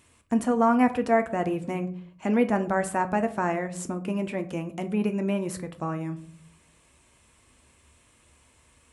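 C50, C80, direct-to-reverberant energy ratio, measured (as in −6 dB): 15.5 dB, 19.5 dB, 8.0 dB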